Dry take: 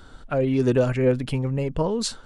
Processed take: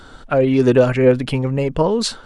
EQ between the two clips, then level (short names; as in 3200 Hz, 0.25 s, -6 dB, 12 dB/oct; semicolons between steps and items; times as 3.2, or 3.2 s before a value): high shelf 9800 Hz -6 dB; dynamic EQ 7000 Hz, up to -4 dB, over -48 dBFS, Q 1.5; low shelf 170 Hz -7 dB; +8.5 dB